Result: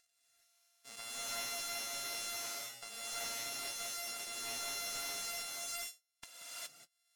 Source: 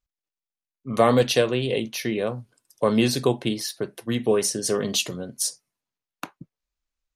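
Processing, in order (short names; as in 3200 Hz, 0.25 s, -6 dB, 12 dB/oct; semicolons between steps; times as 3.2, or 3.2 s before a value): sample sorter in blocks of 64 samples; compressor 6:1, threshold -29 dBFS, peak gain reduction 15.5 dB; band-pass 7700 Hz, Q 0.95; upward compressor, threshold -54 dBFS; non-linear reverb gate 0.44 s rising, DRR -7.5 dB; slew limiter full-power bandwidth 90 Hz; gain -2 dB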